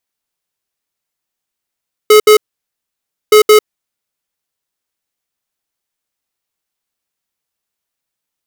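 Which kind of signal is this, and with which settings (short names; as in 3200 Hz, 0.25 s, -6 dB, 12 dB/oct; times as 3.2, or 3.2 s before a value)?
beep pattern square 426 Hz, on 0.10 s, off 0.07 s, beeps 2, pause 0.95 s, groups 2, -4.5 dBFS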